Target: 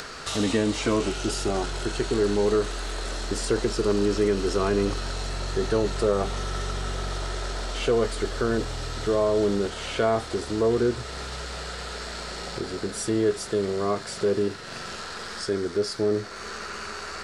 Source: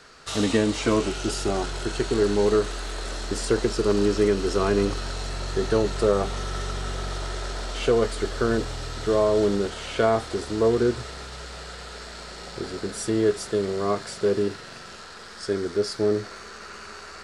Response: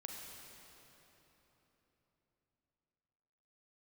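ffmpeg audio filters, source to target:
-filter_complex "[0:a]asplit=2[link_01][link_02];[link_02]alimiter=limit=-17dB:level=0:latency=1:release=24,volume=-1dB[link_03];[link_01][link_03]amix=inputs=2:normalize=0,acompressor=mode=upward:threshold=-22dB:ratio=2.5,volume=-5.5dB"

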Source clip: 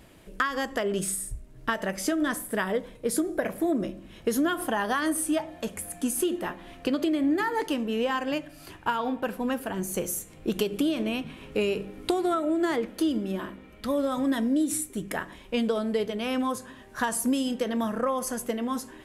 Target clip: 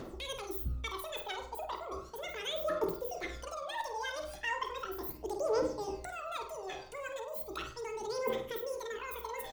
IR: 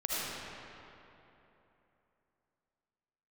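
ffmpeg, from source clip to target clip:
-filter_complex "[0:a]equalizer=frequency=170:width_type=o:width=1.1:gain=9,bandreject=frequency=50:width_type=h:width=6,bandreject=frequency=100:width_type=h:width=6,bandreject=frequency=150:width_type=h:width=6,bandreject=frequency=200:width_type=h:width=6,bandreject=frequency=250:width_type=h:width=6,bandreject=frequency=300:width_type=h:width=6,bandreject=frequency=350:width_type=h:width=6,bandreject=frequency=400:width_type=h:width=6,areverse,acompressor=threshold=-35dB:ratio=6,areverse,aphaser=in_gain=1:out_gain=1:delay=2.8:decay=0.72:speed=0.18:type=triangular,asplit=2[link_01][link_02];[link_02]adelay=99,lowpass=frequency=2400:poles=1,volume=-7.5dB,asplit=2[link_03][link_04];[link_04]adelay=99,lowpass=frequency=2400:poles=1,volume=0.51,asplit=2[link_05][link_06];[link_06]adelay=99,lowpass=frequency=2400:poles=1,volume=0.51,asplit=2[link_07][link_08];[link_08]adelay=99,lowpass=frequency=2400:poles=1,volume=0.51,asplit=2[link_09][link_10];[link_10]adelay=99,lowpass=frequency=2400:poles=1,volume=0.51,asplit=2[link_11][link_12];[link_12]adelay=99,lowpass=frequency=2400:poles=1,volume=0.51[link_13];[link_01][link_03][link_05][link_07][link_09][link_11][link_13]amix=inputs=7:normalize=0,asplit=2[link_14][link_15];[1:a]atrim=start_sample=2205,atrim=end_sample=6174[link_16];[link_15][link_16]afir=irnorm=-1:irlink=0,volume=-14dB[link_17];[link_14][link_17]amix=inputs=2:normalize=0,asetrate=88200,aresample=44100,volume=-5dB"

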